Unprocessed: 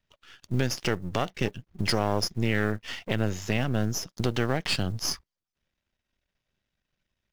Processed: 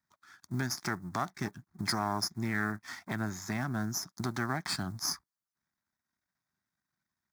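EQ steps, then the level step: Bessel high-pass 200 Hz, order 2; fixed phaser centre 1200 Hz, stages 4; 0.0 dB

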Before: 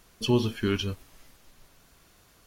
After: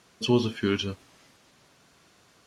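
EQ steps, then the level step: BPF 120–7800 Hz; +1.5 dB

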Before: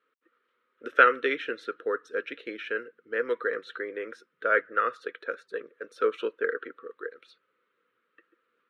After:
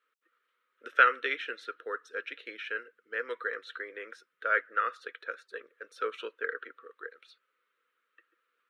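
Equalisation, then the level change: HPF 1300 Hz 6 dB/oct; 0.0 dB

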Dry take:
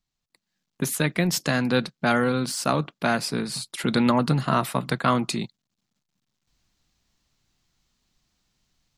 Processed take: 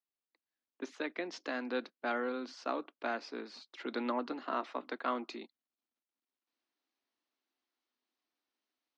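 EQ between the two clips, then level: steep high-pass 260 Hz 48 dB/oct; ladder low-pass 7000 Hz, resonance 60%; air absorption 340 m; 0.0 dB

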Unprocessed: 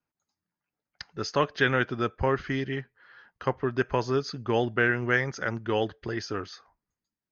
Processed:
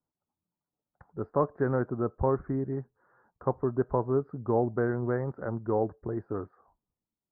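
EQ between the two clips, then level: inverse Chebyshev low-pass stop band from 2800 Hz, stop band 50 dB; air absorption 170 m; 0.0 dB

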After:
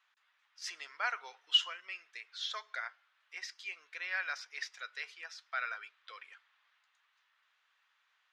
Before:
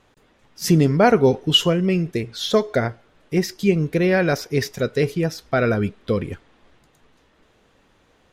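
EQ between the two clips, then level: HPF 1200 Hz 24 dB/oct; air absorption 120 m; -8.5 dB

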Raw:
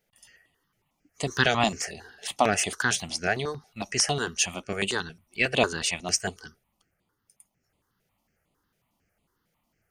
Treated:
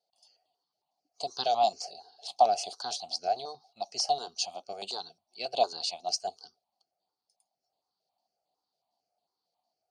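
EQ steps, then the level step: double band-pass 1800 Hz, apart 2.6 oct; +5.0 dB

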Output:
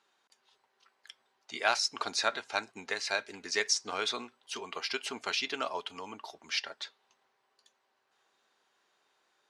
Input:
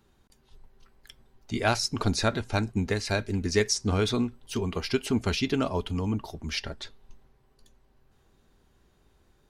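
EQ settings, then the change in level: BPF 780–7200 Hz; 0.0 dB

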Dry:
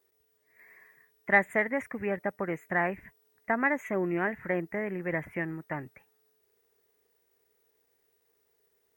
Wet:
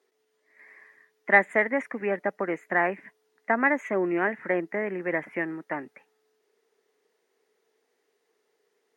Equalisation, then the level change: HPF 220 Hz 24 dB/oct; air absorption 56 m; +4.5 dB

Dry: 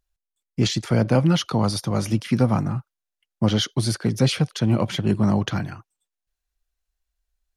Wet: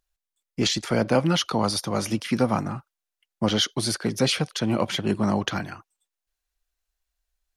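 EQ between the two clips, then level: bell 120 Hz -7 dB 0.99 oct; low shelf 340 Hz -5 dB; +2.0 dB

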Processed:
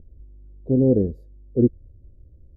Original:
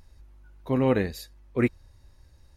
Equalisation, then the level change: inverse Chebyshev low-pass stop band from 980 Hz, stop band 40 dB; +6.5 dB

